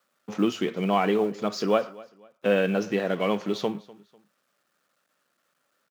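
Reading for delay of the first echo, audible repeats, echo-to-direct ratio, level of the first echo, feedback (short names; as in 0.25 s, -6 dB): 0.248 s, 2, -21.0 dB, -21.5 dB, 33%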